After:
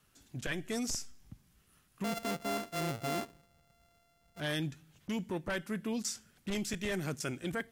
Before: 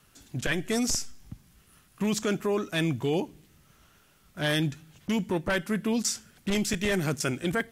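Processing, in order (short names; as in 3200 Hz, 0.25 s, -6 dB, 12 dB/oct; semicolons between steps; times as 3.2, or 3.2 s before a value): 2.04–4.4 sample sorter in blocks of 64 samples; gain -8.5 dB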